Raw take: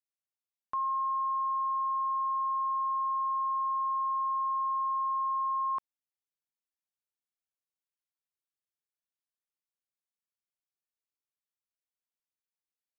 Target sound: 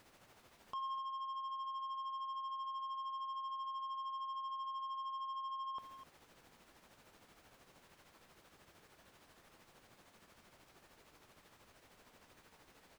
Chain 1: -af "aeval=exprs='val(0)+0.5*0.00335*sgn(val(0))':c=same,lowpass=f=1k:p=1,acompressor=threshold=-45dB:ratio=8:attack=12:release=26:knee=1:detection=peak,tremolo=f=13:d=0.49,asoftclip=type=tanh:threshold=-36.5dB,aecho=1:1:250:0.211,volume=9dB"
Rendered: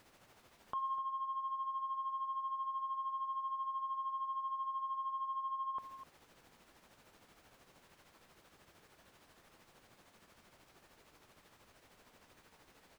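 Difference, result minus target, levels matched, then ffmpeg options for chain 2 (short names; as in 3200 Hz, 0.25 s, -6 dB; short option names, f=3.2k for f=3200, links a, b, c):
soft clip: distortion -16 dB
-af "aeval=exprs='val(0)+0.5*0.00335*sgn(val(0))':c=same,lowpass=f=1k:p=1,acompressor=threshold=-45dB:ratio=8:attack=12:release=26:knee=1:detection=peak,tremolo=f=13:d=0.49,asoftclip=type=tanh:threshold=-47dB,aecho=1:1:250:0.211,volume=9dB"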